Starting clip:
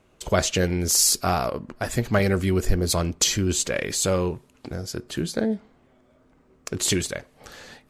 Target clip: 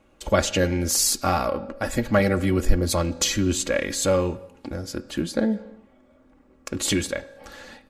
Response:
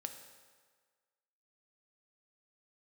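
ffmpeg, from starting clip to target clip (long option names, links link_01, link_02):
-filter_complex "[0:a]aecho=1:1:3.6:0.57,asplit=2[link_01][link_02];[1:a]atrim=start_sample=2205,afade=type=out:start_time=0.37:duration=0.01,atrim=end_sample=16758,lowpass=3800[link_03];[link_02][link_03]afir=irnorm=-1:irlink=0,volume=-2.5dB[link_04];[link_01][link_04]amix=inputs=2:normalize=0,volume=-3dB"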